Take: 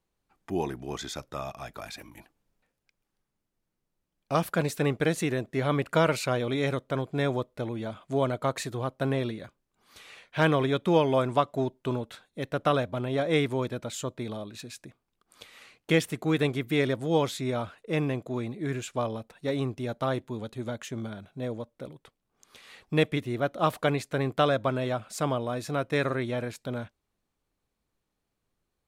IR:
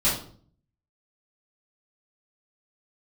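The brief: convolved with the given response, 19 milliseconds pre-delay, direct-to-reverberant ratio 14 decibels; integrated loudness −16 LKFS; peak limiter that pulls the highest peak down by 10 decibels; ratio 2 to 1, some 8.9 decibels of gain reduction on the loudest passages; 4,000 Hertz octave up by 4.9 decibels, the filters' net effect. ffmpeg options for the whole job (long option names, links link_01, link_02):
-filter_complex "[0:a]equalizer=frequency=4000:width_type=o:gain=6,acompressor=threshold=-34dB:ratio=2,alimiter=level_in=2dB:limit=-24dB:level=0:latency=1,volume=-2dB,asplit=2[link_01][link_02];[1:a]atrim=start_sample=2205,adelay=19[link_03];[link_02][link_03]afir=irnorm=-1:irlink=0,volume=-27dB[link_04];[link_01][link_04]amix=inputs=2:normalize=0,volume=21.5dB"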